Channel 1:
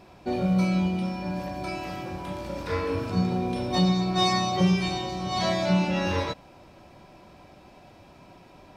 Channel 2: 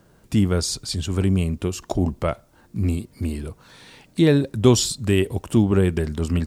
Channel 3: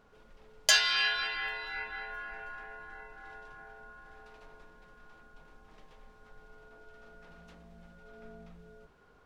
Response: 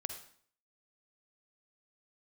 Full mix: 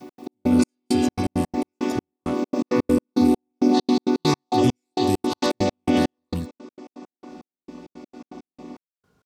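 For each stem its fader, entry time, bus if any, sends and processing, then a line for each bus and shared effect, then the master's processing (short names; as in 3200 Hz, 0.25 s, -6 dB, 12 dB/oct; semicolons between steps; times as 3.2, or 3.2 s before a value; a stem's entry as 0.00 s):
+2.5 dB, 0.00 s, send -4.5 dB, chord vocoder minor triad, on B3; limiter -19.5 dBFS, peak gain reduction 7 dB
-15.0 dB, 0.00 s, no send, high shelf 9400 Hz +9.5 dB
7.03 s -18 dB -> 7.37 s -9.5 dB, 0.00 s, send -5.5 dB, dry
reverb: on, RT60 0.55 s, pre-delay 43 ms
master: HPF 130 Hz 12 dB/oct; tone controls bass +15 dB, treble +13 dB; step gate "x.x..xx...xx.x." 166 bpm -60 dB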